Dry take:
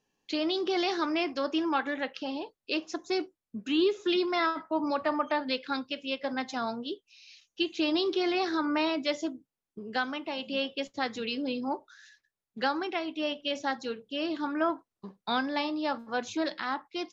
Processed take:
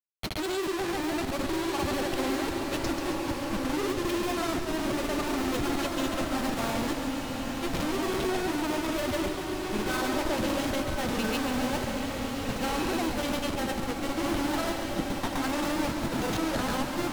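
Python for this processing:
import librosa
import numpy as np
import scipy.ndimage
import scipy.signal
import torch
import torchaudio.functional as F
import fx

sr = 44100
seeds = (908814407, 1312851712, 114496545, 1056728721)

p1 = fx.diode_clip(x, sr, knee_db=-25.5)
p2 = fx.peak_eq(p1, sr, hz=140.0, db=13.5, octaves=0.4)
p3 = fx.over_compress(p2, sr, threshold_db=-34.0, ratio=-0.5)
p4 = p2 + F.gain(torch.from_numpy(p3), 3.0).numpy()
p5 = fx.schmitt(p4, sr, flips_db=-29.0)
p6 = fx.vibrato(p5, sr, rate_hz=2.1, depth_cents=23.0)
p7 = fx.granulator(p6, sr, seeds[0], grain_ms=100.0, per_s=20.0, spray_ms=100.0, spread_st=0)
p8 = p7 + fx.echo_split(p7, sr, split_hz=330.0, low_ms=665, high_ms=138, feedback_pct=52, wet_db=-8.5, dry=0)
p9 = fx.rev_bloom(p8, sr, seeds[1], attack_ms=1650, drr_db=2.0)
y = F.gain(torch.from_numpy(p9), -1.5).numpy()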